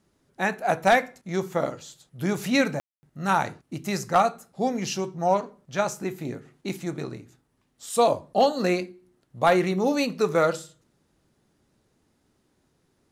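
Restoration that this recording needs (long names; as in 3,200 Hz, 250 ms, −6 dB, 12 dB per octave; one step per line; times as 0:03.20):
clipped peaks rebuilt −10.5 dBFS
ambience match 0:02.80–0:03.03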